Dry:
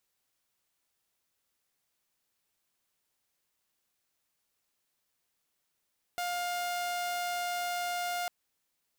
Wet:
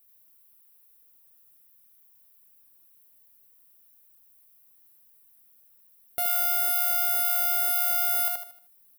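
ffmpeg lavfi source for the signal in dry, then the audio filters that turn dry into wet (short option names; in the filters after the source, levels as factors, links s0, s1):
-f lavfi -i "aevalsrc='0.0355*(2*mod(707*t,1)-1)':d=2.1:s=44100"
-af "lowshelf=f=410:g=9.5,aexciter=amount=11.3:drive=2.4:freq=9800,aecho=1:1:77|154|231|308|385:0.708|0.262|0.0969|0.0359|0.0133"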